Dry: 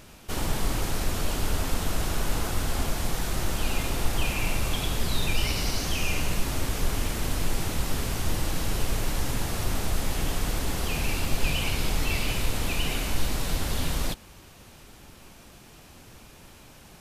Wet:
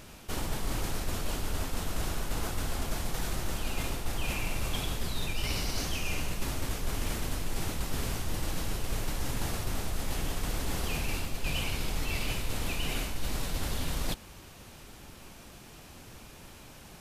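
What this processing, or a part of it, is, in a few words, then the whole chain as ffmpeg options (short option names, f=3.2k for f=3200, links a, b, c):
compression on the reversed sound: -af "areverse,acompressor=threshold=-27dB:ratio=6,areverse"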